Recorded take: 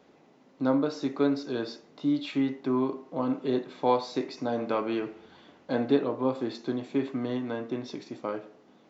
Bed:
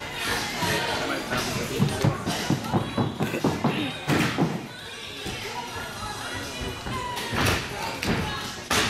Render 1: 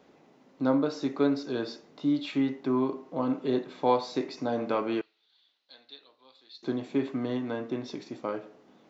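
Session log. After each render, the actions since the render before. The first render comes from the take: 5.01–6.63 band-pass 4000 Hz, Q 5.4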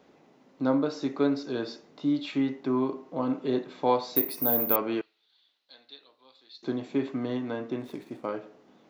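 4.16–4.76 careless resampling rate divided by 3×, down filtered, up zero stuff; 7.79–8.26 median filter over 9 samples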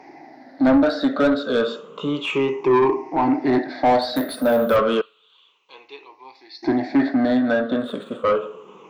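moving spectral ripple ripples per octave 0.74, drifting -0.31 Hz, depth 19 dB; overdrive pedal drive 23 dB, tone 1300 Hz, clips at -7 dBFS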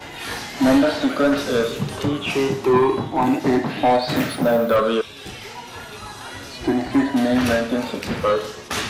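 add bed -2.5 dB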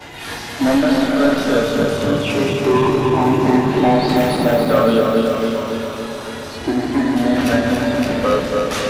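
regenerating reverse delay 0.141 s, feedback 81%, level -5 dB; repeats that get brighter 0.11 s, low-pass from 200 Hz, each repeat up 1 oct, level -3 dB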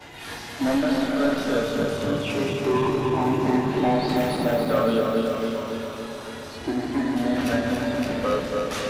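gain -7.5 dB

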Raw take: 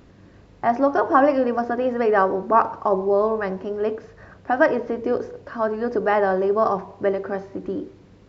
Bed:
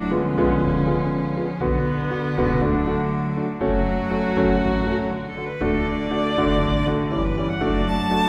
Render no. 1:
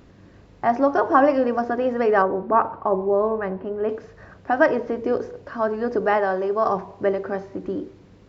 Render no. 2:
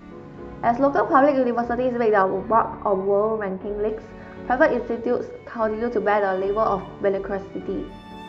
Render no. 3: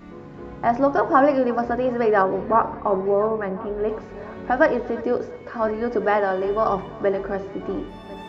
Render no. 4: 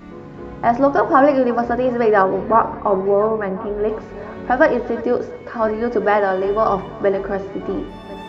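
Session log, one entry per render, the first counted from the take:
2.22–3.89 air absorption 360 m; 6.17–6.67 low shelf 410 Hz -6.5 dB
add bed -19 dB
multi-head echo 0.349 s, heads first and third, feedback 46%, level -21.5 dB
gain +4 dB; limiter -1 dBFS, peak gain reduction 1.5 dB

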